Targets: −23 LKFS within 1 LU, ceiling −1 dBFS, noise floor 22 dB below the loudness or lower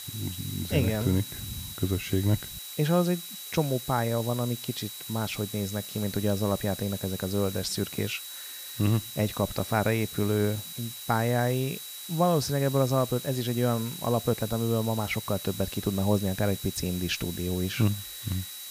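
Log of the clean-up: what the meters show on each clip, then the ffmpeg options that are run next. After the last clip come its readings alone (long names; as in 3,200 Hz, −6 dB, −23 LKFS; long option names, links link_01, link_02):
interfering tone 3,900 Hz; level of the tone −43 dBFS; background noise floor −41 dBFS; target noise floor −51 dBFS; integrated loudness −28.5 LKFS; sample peak −10.5 dBFS; target loudness −23.0 LKFS
→ -af "bandreject=frequency=3900:width=30"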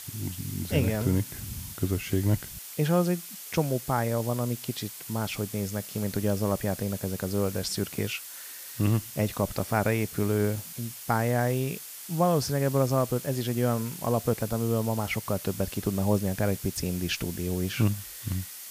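interfering tone none found; background noise floor −42 dBFS; target noise floor −51 dBFS
→ -af "afftdn=noise_reduction=9:noise_floor=-42"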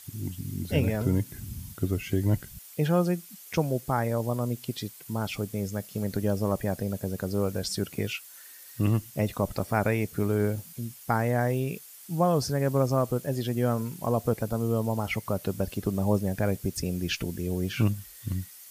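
background noise floor −48 dBFS; target noise floor −51 dBFS
→ -af "afftdn=noise_reduction=6:noise_floor=-48"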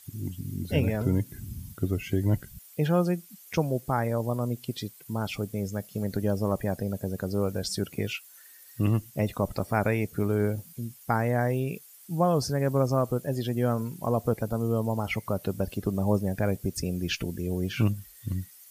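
background noise floor −52 dBFS; integrated loudness −29.0 LKFS; sample peak −11.0 dBFS; target loudness −23.0 LKFS
→ -af "volume=6dB"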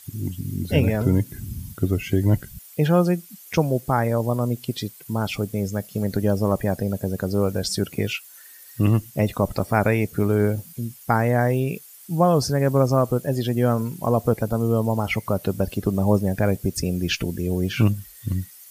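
integrated loudness −23.0 LKFS; sample peak −5.0 dBFS; background noise floor −46 dBFS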